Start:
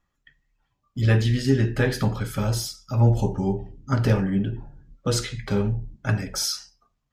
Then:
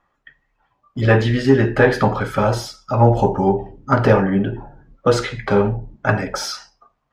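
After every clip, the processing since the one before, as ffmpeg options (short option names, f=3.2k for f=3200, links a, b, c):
-filter_complex "[0:a]asplit=2[a][b];[b]highpass=f=720:p=1,volume=11dB,asoftclip=type=tanh:threshold=-7.5dB[c];[a][c]amix=inputs=2:normalize=0,lowpass=f=1.1k:p=1,volume=-6dB,equalizer=f=810:t=o:w=2.4:g=6.5,volume=6dB"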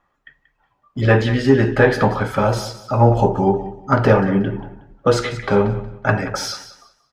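-af "aecho=1:1:183|366|549:0.188|0.0452|0.0108"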